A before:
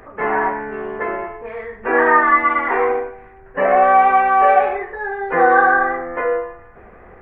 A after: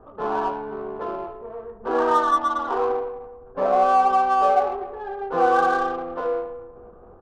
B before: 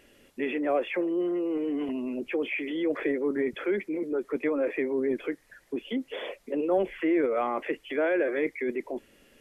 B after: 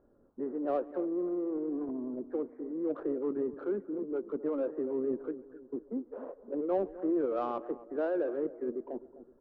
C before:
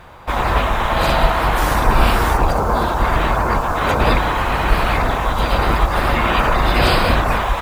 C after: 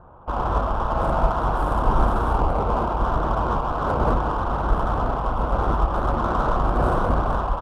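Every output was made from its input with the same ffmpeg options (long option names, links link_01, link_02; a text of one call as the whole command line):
ffmpeg -i in.wav -filter_complex "[0:a]asuperstop=centerf=3600:order=12:qfactor=0.52,asplit=2[link_01][link_02];[link_02]adelay=257,lowpass=frequency=890:poles=1,volume=-14dB,asplit=2[link_03][link_04];[link_04]adelay=257,lowpass=frequency=890:poles=1,volume=0.48,asplit=2[link_05][link_06];[link_06]adelay=257,lowpass=frequency=890:poles=1,volume=0.48,asplit=2[link_07][link_08];[link_08]adelay=257,lowpass=frequency=890:poles=1,volume=0.48,asplit=2[link_09][link_10];[link_10]adelay=257,lowpass=frequency=890:poles=1,volume=0.48[link_11];[link_03][link_05][link_07][link_09][link_11]amix=inputs=5:normalize=0[link_12];[link_01][link_12]amix=inputs=2:normalize=0,adynamicsmooth=sensitivity=2:basefreq=1700,asplit=2[link_13][link_14];[link_14]adelay=140,highpass=300,lowpass=3400,asoftclip=type=hard:threshold=-10dB,volume=-23dB[link_15];[link_13][link_15]amix=inputs=2:normalize=0,volume=-5dB" out.wav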